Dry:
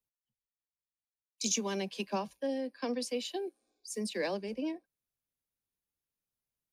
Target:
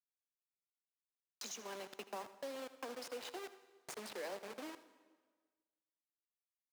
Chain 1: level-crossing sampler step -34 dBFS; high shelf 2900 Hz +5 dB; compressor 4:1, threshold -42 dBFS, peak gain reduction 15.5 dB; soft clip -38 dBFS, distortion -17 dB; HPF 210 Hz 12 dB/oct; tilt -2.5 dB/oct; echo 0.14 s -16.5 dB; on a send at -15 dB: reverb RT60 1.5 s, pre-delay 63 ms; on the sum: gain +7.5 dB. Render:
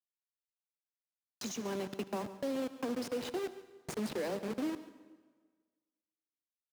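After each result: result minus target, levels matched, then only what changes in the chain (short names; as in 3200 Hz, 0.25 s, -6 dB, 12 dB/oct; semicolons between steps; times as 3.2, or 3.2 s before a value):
echo 60 ms late; 250 Hz band +7.5 dB; compressor: peak gain reduction -5 dB
change: echo 80 ms -16.5 dB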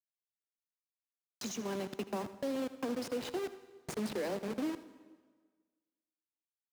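250 Hz band +7.5 dB; compressor: peak gain reduction -5 dB
change: HPF 600 Hz 12 dB/oct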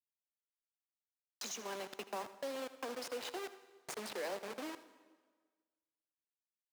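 compressor: peak gain reduction -5 dB
change: compressor 4:1, threshold -48.5 dBFS, peak gain reduction 20.5 dB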